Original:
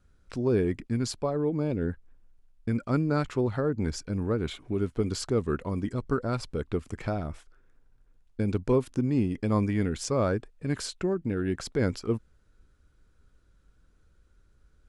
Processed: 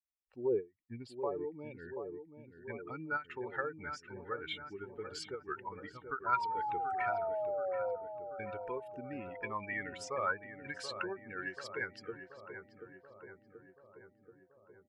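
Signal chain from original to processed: per-bin expansion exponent 2; comb 2.2 ms, depth 34%; in parallel at -2 dB: compressor, threshold -39 dBFS, peak gain reduction 17 dB; on the sum: limiter -23 dBFS, peak gain reduction 8.5 dB; band-pass sweep 600 Hz -> 1600 Hz, 0.49–1.53; 0.76–3 envelope phaser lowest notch 460 Hz, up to 1600 Hz, full sweep at -48 dBFS; 6.26–7.96 painted sound fall 500–1000 Hz -45 dBFS; AGC gain up to 9 dB; on a send: darkening echo 0.732 s, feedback 69%, low-pass 1400 Hz, level -8.5 dB; on the sum: ending taper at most 280 dB/s

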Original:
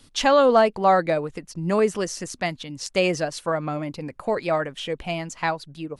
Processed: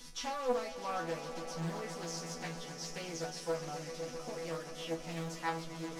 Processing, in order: delta modulation 64 kbps, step -31.5 dBFS; bell 5600 Hz +10 dB 0.34 oct; notch 660 Hz, Q 18; in parallel at -2 dB: compressor, threshold -25 dBFS, peak gain reduction 12 dB; on the sum: hard clip -11.5 dBFS, distortion -18 dB; resonator bank E3 fifth, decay 0.27 s; on a send: swelling echo 0.132 s, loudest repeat 5, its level -14.5 dB; on the sum: Doppler distortion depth 0.59 ms; gain -6 dB

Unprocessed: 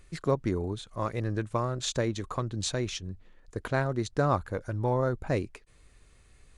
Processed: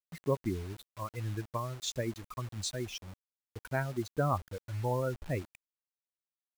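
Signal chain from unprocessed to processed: per-bin expansion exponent 2; bit-crush 8-bit; gain -1.5 dB

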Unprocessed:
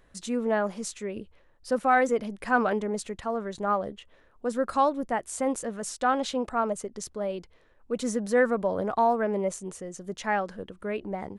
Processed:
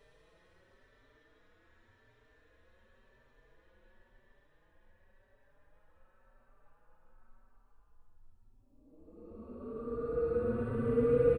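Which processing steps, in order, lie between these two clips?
octaver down 2 oct, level -1 dB; Paulstretch 36×, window 0.10 s, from 7.62; endless flanger 4.6 ms +0.91 Hz

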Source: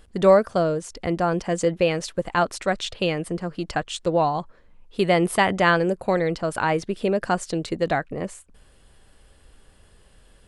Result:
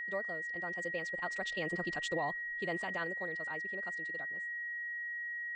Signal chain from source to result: Doppler pass-by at 3.7, 6 m/s, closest 2.8 m; elliptic low-pass 7900 Hz, stop band 40 dB; low shelf 240 Hz -8 dB; limiter -23 dBFS, peak gain reduction 11 dB; time stretch by phase-locked vocoder 0.53×; whine 1900 Hz -34 dBFS; gain -3.5 dB

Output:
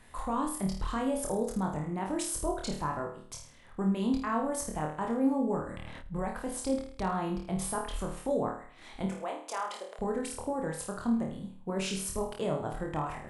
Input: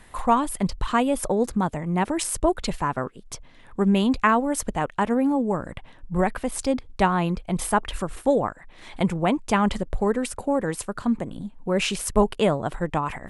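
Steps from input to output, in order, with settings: limiter -16 dBFS, peak gain reduction 10.5 dB; 9.06–9.99 HPF 470 Hz 24 dB/oct; on a send: flutter echo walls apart 4.5 m, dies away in 0.48 s; on the sum: dynamic EQ 2500 Hz, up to -6 dB, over -43 dBFS, Q 1.3; 5.68–6.21 sustainer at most 21 dB/s; gain -8 dB

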